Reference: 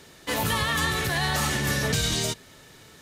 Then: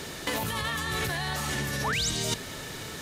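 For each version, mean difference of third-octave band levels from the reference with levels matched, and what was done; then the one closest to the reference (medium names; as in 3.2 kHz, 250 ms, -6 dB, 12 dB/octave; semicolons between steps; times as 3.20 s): 6.5 dB: compressor with a negative ratio -34 dBFS, ratio -1; painted sound rise, 1.84–2.10 s, 750–8700 Hz -33 dBFS; trim +3.5 dB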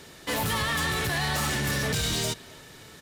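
2.0 dB: saturation -26 dBFS, distortion -11 dB; band-stop 6.4 kHz, Q 29; speakerphone echo 260 ms, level -18 dB; trim +2.5 dB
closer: second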